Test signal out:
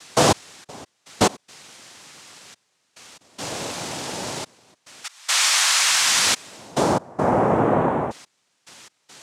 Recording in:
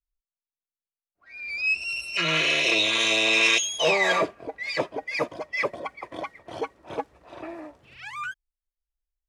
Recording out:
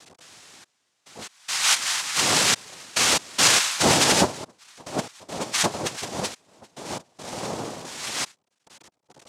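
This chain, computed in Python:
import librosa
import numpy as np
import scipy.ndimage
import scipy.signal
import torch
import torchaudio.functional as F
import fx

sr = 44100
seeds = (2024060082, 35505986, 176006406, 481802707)

y = x + 0.5 * 10.0 ** (-34.5 / 20.0) * np.sign(x)
y = fx.step_gate(y, sr, bpm=71, pattern='xxx..x.xx', floor_db=-24.0, edge_ms=4.5)
y = fx.noise_vocoder(y, sr, seeds[0], bands=2)
y = F.gain(torch.from_numpy(y), 2.5).numpy()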